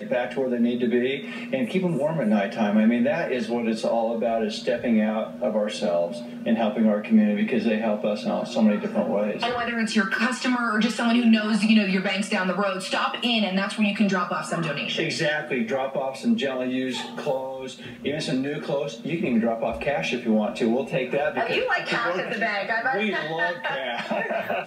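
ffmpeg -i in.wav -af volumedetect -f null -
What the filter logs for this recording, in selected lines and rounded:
mean_volume: -23.9 dB
max_volume: -8.0 dB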